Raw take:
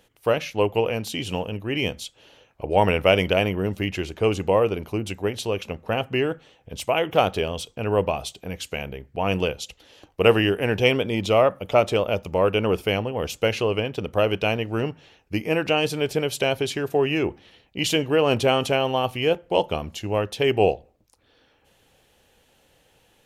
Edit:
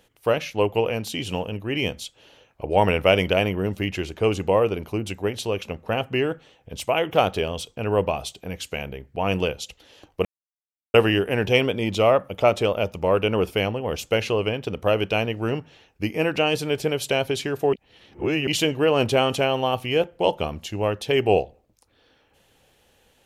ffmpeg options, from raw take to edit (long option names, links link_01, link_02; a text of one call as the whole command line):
ffmpeg -i in.wav -filter_complex "[0:a]asplit=4[link_01][link_02][link_03][link_04];[link_01]atrim=end=10.25,asetpts=PTS-STARTPTS,afade=type=out:start_time=10.246:duration=0.004:curve=hsin,apad=pad_dur=0.69[link_05];[link_02]atrim=start=10.25:end=17.042,asetpts=PTS-STARTPTS,afade=type=in:duration=0.004:curve=hsin[link_06];[link_03]atrim=start=17.038:end=17.782,asetpts=PTS-STARTPTS,areverse[link_07];[link_04]atrim=start=17.778[link_08];[link_05][link_06]concat=n=2:v=0:a=1[link_09];[link_09][link_07]acrossfade=duration=0.004:curve1=hsin:curve2=hsin[link_10];[link_10][link_08]acrossfade=duration=0.004:curve1=hsin:curve2=hsin" out.wav